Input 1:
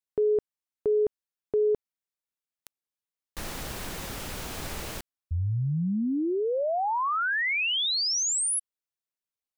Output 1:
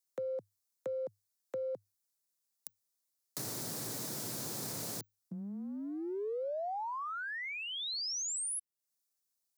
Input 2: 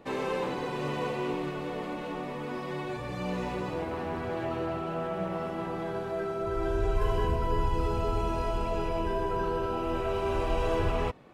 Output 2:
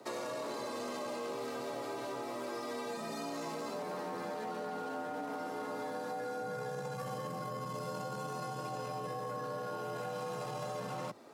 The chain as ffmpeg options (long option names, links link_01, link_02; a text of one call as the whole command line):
ffmpeg -i in.wav -filter_complex "[0:a]acompressor=threshold=-29dB:ratio=6:attack=0.57:release=22:knee=1:detection=rms,afreqshift=100,highshelf=frequency=3900:gain=-11.5,aexciter=amount=7.9:drive=5:freq=4200,acrossover=split=210|510[link_01][link_02][link_03];[link_01]acompressor=threshold=-53dB:ratio=4[link_04];[link_02]acompressor=threshold=-46dB:ratio=4[link_05];[link_03]acompressor=threshold=-40dB:ratio=4[link_06];[link_04][link_05][link_06]amix=inputs=3:normalize=0" out.wav